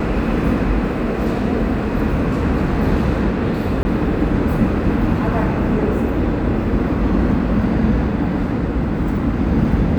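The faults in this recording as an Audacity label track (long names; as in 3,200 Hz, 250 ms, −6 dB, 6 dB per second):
3.830000	3.850000	drop-out 20 ms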